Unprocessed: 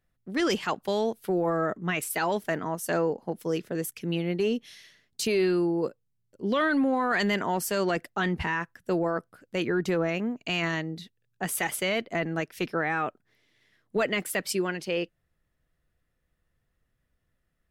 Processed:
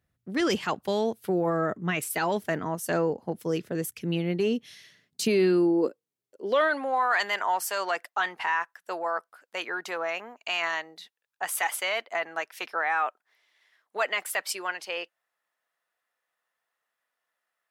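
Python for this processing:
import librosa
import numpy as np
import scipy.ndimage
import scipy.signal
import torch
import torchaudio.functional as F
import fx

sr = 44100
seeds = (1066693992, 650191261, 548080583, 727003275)

y = fx.filter_sweep_highpass(x, sr, from_hz=74.0, to_hz=860.0, start_s=4.32, end_s=7.09, q=1.7)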